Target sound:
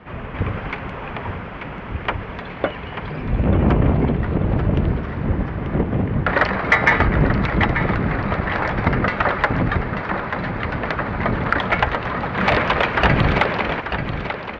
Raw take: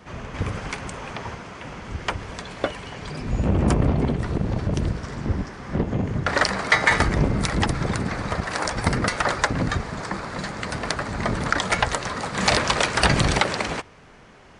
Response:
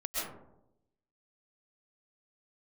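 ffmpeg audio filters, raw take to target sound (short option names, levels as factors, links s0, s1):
-af "lowpass=f=2900:w=0.5412,lowpass=f=2900:w=1.3066,aecho=1:1:888|1776|2664|3552|4440:0.355|0.149|0.0626|0.0263|0.011,acontrast=26,volume=0.891"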